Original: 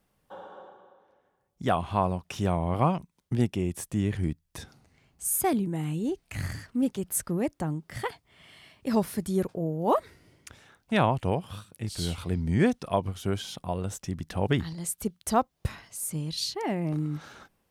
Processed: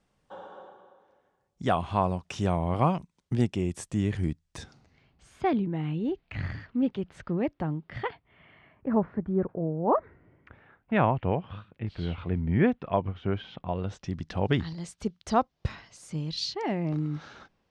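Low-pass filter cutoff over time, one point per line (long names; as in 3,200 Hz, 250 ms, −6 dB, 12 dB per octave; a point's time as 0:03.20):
low-pass filter 24 dB per octave
0:04.61 8,400 Hz
0:05.29 3,600 Hz
0:07.96 3,600 Hz
0:08.93 1,600 Hz
0:09.91 1,600 Hz
0:11.23 2,800 Hz
0:13.50 2,800 Hz
0:14.16 5,700 Hz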